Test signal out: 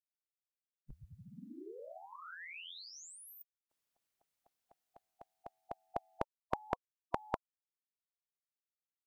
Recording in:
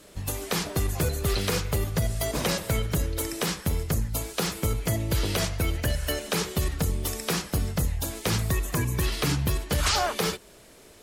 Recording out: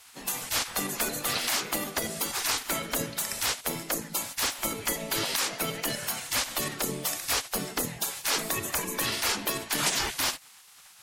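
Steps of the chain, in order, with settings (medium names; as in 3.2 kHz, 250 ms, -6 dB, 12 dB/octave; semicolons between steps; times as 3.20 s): spectral gate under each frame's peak -15 dB weak; trim +4 dB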